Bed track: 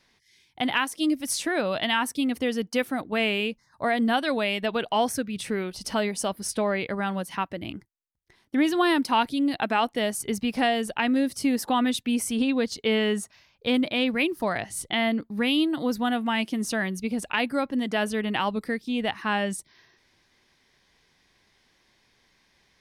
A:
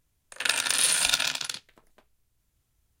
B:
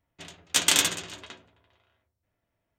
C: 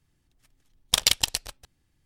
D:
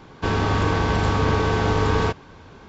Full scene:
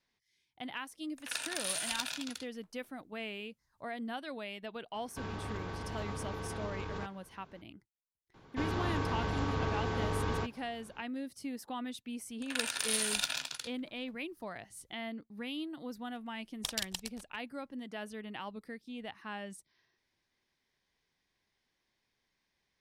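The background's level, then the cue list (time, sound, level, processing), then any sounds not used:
bed track -16.5 dB
0.86 add A -13 dB
4.94 add D -16.5 dB + limiter -15 dBFS
8.34 add D -13.5 dB
12.1 add A -9.5 dB
15.71 add C -15.5 dB
not used: B

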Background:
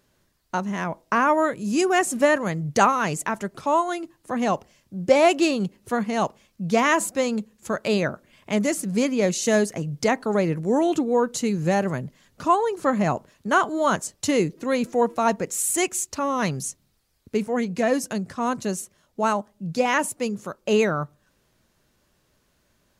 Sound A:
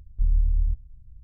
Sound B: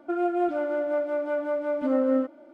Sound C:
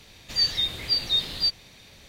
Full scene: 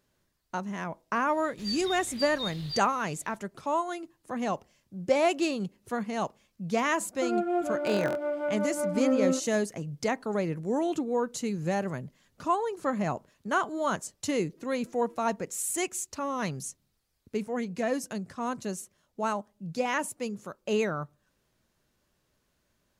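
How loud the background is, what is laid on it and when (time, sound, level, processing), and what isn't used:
background -7.5 dB
1.29 add C -12.5 dB
7.13 add B -3 dB + stuck buffer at 0.72, samples 1024, times 12
not used: A

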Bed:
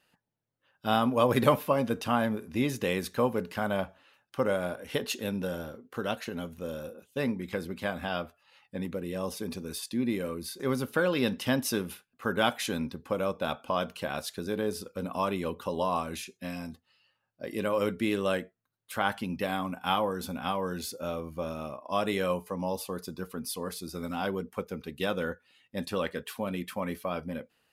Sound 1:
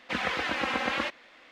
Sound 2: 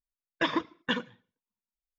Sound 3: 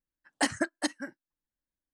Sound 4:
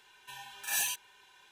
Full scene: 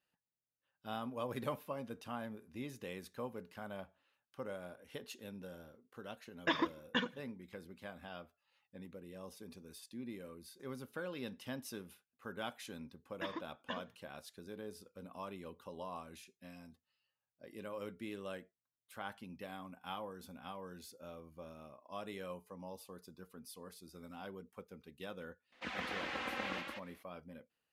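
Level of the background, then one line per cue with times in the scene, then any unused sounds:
bed -16.5 dB
6.06 add 2 -5.5 dB
12.8 add 2 -15.5 dB
25.52 add 1 -12.5 dB + echo 0.174 s -4.5 dB
not used: 3, 4

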